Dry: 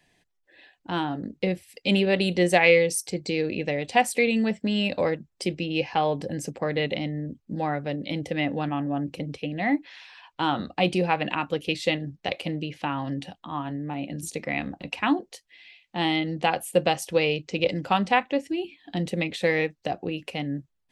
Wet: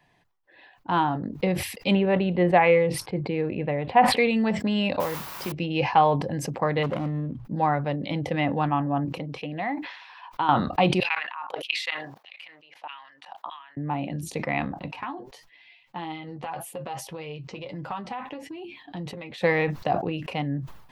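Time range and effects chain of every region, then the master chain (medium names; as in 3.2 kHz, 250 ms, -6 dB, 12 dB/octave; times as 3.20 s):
1.95–4.17 s: distance through air 430 m + band-stop 5.9 kHz, Q 11
5.00–5.52 s: compression 3:1, threshold -29 dBFS + word length cut 6-bit, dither triangular
6.83–7.45 s: median filter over 25 samples + low-pass 9.2 kHz + hum notches 60/120 Hz
9.05–10.49 s: bass shelf 150 Hz -10 dB + compression 3:1, threshold -28 dBFS
11.00–13.77 s: level held to a coarse grid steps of 23 dB + LFO high-pass saw down 1.6 Hz 550–3200 Hz
14.88–19.38 s: compression 12:1, threshold -29 dBFS + flange 1.7 Hz, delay 5.8 ms, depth 3 ms, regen +38% + doubling 15 ms -13 dB
whole clip: graphic EQ 125/1000/8000 Hz +7/+12/-8 dB; decay stretcher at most 74 dB/s; trim -2 dB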